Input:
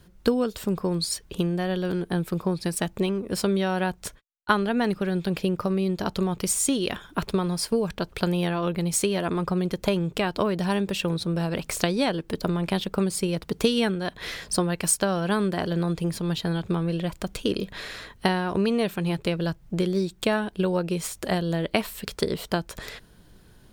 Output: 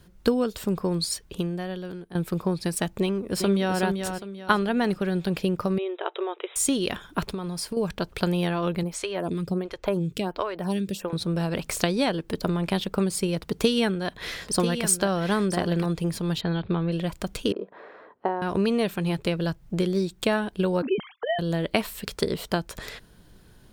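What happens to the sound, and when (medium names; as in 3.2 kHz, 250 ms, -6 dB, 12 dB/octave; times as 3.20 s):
1.04–2.15 s: fade out linear, to -15.5 dB
3.01–3.79 s: echo throw 390 ms, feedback 35%, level -6 dB
5.78–6.56 s: brick-wall FIR band-pass 330–3900 Hz
7.28–7.77 s: compression, threshold -27 dBFS
8.83–11.13 s: lamp-driven phase shifter 1.4 Hz
13.41–15.86 s: delay 991 ms -8.5 dB
16.41–16.92 s: steep low-pass 4.5 kHz 72 dB/octave
17.52–18.42 s: Butterworth band-pass 610 Hz, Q 0.78
20.82–21.39 s: formants replaced by sine waves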